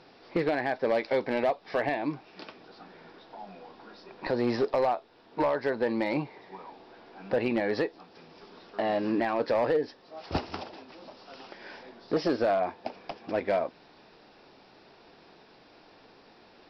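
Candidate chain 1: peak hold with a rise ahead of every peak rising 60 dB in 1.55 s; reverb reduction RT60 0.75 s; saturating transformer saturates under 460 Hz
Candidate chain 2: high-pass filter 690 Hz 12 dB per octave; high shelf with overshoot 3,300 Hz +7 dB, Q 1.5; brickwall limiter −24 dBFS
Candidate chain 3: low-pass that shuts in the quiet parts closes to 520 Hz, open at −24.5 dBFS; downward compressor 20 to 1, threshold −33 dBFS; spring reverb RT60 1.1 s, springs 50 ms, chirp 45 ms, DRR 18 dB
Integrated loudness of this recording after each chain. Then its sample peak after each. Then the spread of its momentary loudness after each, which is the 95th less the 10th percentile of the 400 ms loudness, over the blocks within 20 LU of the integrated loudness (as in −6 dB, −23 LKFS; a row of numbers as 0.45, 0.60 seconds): −29.0, −37.0, −40.0 LKFS; −13.0, −24.0, −21.0 dBFS; 19, 20, 22 LU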